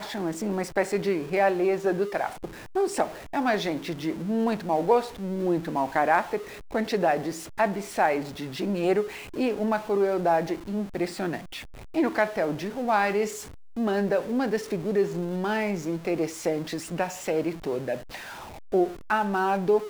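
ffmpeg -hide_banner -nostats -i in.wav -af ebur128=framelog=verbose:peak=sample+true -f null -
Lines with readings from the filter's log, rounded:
Integrated loudness:
  I:         -27.0 LUFS
  Threshold: -37.2 LUFS
Loudness range:
  LRA:         2.3 LU
  Threshold: -47.2 LUFS
  LRA low:   -28.5 LUFS
  LRA high:  -26.1 LUFS
Sample peak:
  Peak:       -9.6 dBFS
True peak:
  Peak:       -9.6 dBFS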